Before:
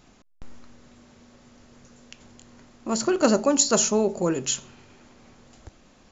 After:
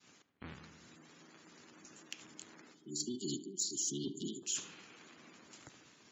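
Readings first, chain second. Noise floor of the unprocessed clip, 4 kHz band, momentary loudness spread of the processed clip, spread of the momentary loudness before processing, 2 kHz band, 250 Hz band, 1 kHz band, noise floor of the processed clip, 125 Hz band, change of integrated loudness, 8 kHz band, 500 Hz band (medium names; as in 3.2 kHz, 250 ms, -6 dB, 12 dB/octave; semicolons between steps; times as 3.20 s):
-56 dBFS, -11.5 dB, 22 LU, 10 LU, -17.5 dB, -17.5 dB, -27.5 dB, -65 dBFS, -14.0 dB, -17.5 dB, no reading, -24.5 dB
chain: cycle switcher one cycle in 3, inverted; expander -52 dBFS; time-frequency box 2.75–4.43 s, 430–2900 Hz -29 dB; high-pass 270 Hz 12 dB/octave; spectral gate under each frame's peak -20 dB strong; peaking EQ 610 Hz -14 dB 1.9 oct; reverse; compression 4:1, threshold -40 dBFS, peak gain reduction 20 dB; reverse; saturation -24.5 dBFS, distortion -29 dB; on a send: tape echo 73 ms, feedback 73%, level -14 dB, low-pass 2.6 kHz; on the sum: trim +2.5 dB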